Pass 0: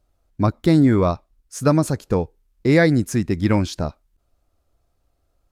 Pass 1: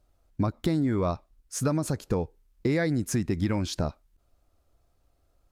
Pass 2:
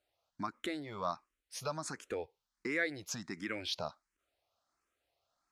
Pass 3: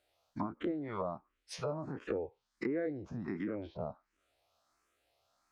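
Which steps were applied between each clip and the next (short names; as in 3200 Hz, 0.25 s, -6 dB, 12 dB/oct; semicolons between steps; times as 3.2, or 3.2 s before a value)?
in parallel at +2 dB: limiter -13.5 dBFS, peak gain reduction 10.5 dB; on the sum: compressor 5:1, threshold -15 dBFS, peak gain reduction 8 dB; gain -7.5 dB
band-pass 2600 Hz, Q 0.54; endless phaser +1.4 Hz; gain +1.5 dB
spectral dilation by 60 ms; treble ducked by the level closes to 530 Hz, closed at -32.5 dBFS; gain +2 dB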